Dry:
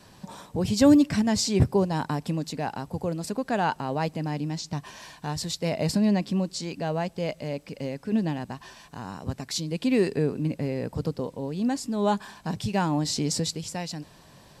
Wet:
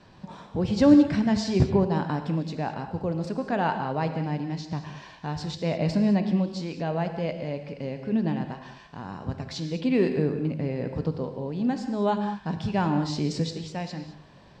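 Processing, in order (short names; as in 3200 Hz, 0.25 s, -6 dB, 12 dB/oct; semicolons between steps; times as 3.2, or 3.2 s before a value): air absorption 170 m; non-linear reverb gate 0.24 s flat, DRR 6.5 dB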